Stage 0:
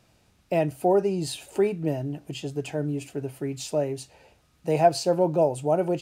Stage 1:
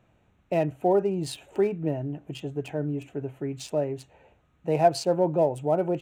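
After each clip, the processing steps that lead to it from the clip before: Wiener smoothing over 9 samples; gain -1 dB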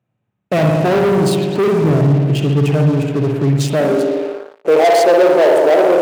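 spring tank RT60 1.5 s, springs 57 ms, chirp 70 ms, DRR 1.5 dB; sample leveller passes 5; high-pass sweep 130 Hz -> 430 Hz, 3.6–4.49; gain -3.5 dB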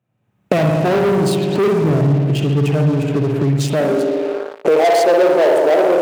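recorder AGC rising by 31 dB/s; gain -2 dB

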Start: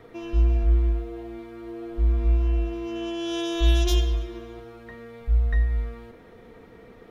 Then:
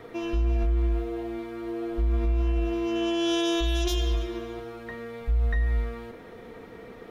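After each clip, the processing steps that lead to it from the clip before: low shelf 140 Hz -6 dB; limiter -23 dBFS, peak gain reduction 9.5 dB; gain +5 dB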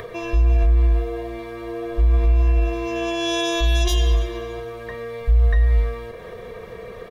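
comb 1.8 ms, depth 89%; upward compressor, threshold -34 dBFS; gain +3.5 dB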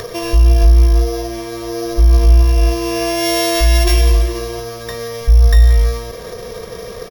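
sample sorter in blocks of 8 samples; echo 0.179 s -13 dB; gain +7 dB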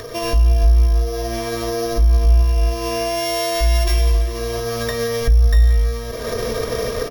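recorder AGC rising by 28 dB/s; on a send at -6 dB: reverb RT60 0.15 s, pre-delay 3 ms; on the sum: gain -6.5 dB

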